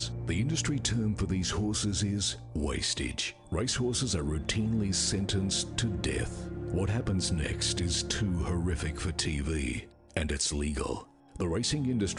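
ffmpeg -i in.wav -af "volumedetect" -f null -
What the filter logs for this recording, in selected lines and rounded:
mean_volume: -30.9 dB
max_volume: -13.5 dB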